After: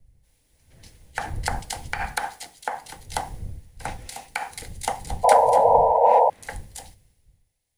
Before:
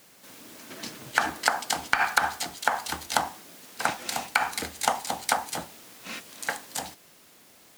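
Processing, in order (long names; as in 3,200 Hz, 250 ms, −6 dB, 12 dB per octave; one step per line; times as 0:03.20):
wind on the microphone 100 Hz −32 dBFS
thirty-one-band graphic EQ 500 Hz +9 dB, 800 Hz +7 dB, 1,250 Hz −5 dB, 2,000 Hz +6 dB, 10,000 Hz +9 dB, 16,000 Hz −12 dB
sound drawn into the spectrogram noise, 0:05.23–0:06.30, 450–1,000 Hz −13 dBFS
multiband upward and downward expander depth 70%
level −7.5 dB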